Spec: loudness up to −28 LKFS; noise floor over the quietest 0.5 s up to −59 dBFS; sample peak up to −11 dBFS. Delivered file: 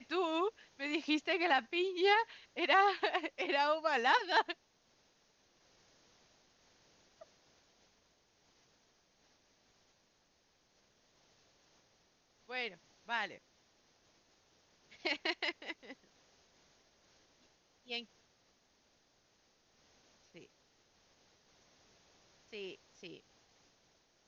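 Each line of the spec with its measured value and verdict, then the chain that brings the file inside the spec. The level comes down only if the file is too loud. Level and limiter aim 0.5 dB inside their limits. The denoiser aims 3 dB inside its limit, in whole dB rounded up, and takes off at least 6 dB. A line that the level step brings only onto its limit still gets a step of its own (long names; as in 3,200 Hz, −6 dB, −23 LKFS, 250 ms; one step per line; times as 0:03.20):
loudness −34.5 LKFS: in spec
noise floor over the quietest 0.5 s −74 dBFS: in spec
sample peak −16.5 dBFS: in spec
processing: no processing needed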